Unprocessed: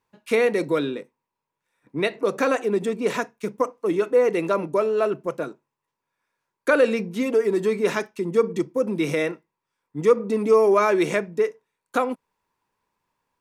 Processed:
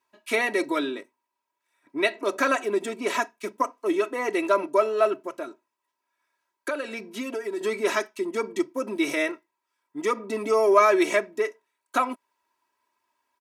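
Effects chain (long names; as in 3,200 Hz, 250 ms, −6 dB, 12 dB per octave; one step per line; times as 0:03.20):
high-pass filter 550 Hz 6 dB per octave
comb filter 3.1 ms, depth 84%
0:05.23–0:07.61: downward compressor 2.5 to 1, threshold −31 dBFS, peak gain reduction 11.5 dB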